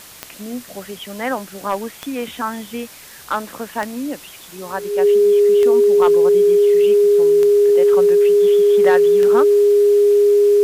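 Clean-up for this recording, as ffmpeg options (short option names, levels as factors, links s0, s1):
-af "adeclick=t=4,bandreject=f=410:w=30,afwtdn=0.011"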